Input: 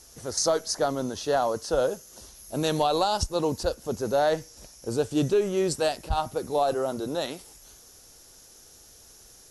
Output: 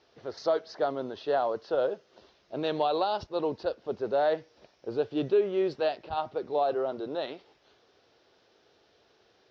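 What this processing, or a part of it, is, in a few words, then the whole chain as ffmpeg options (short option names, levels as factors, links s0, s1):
kitchen radio: -af "lowpass=f=5200:w=0.5412,lowpass=f=5200:w=1.3066,highpass=160,equalizer=f=170:t=q:w=4:g=-5,equalizer=f=240:t=q:w=4:g=-4,equalizer=f=400:t=q:w=4:g=4,equalizer=f=650:t=q:w=4:g=3,lowpass=f=4000:w=0.5412,lowpass=f=4000:w=1.3066,volume=0.596"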